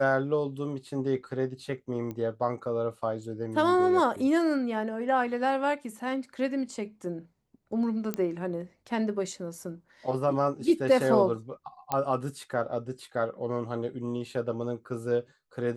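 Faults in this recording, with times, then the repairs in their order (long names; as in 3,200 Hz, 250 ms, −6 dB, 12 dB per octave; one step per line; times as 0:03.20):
0:02.11: click −25 dBFS
0:08.14: click −16 dBFS
0:11.92: click −14 dBFS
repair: click removal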